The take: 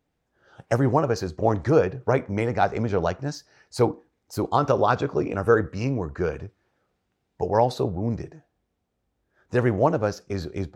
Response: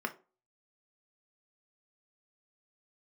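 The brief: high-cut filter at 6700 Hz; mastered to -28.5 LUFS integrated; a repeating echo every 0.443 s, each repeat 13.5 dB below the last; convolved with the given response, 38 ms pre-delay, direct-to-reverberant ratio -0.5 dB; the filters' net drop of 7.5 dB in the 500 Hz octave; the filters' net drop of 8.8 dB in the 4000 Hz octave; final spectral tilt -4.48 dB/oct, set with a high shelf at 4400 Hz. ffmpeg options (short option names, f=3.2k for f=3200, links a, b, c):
-filter_complex "[0:a]lowpass=6.7k,equalizer=f=500:t=o:g=-9,equalizer=f=4k:t=o:g=-6.5,highshelf=f=4.4k:g=-6.5,aecho=1:1:443|886:0.211|0.0444,asplit=2[a][b];[1:a]atrim=start_sample=2205,adelay=38[c];[b][c]afir=irnorm=-1:irlink=0,volume=-4dB[d];[a][d]amix=inputs=2:normalize=0,volume=-3dB"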